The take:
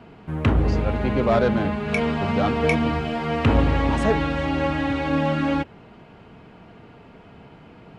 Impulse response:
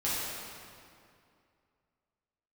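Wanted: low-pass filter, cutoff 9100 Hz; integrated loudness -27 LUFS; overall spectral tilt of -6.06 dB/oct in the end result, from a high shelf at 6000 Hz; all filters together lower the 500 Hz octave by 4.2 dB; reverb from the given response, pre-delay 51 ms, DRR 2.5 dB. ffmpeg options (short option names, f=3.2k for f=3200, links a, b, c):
-filter_complex "[0:a]lowpass=9.1k,equalizer=f=500:t=o:g=-5,highshelf=f=6k:g=-4.5,asplit=2[a][b];[1:a]atrim=start_sample=2205,adelay=51[c];[b][c]afir=irnorm=-1:irlink=0,volume=-11dB[d];[a][d]amix=inputs=2:normalize=0,volume=-5dB"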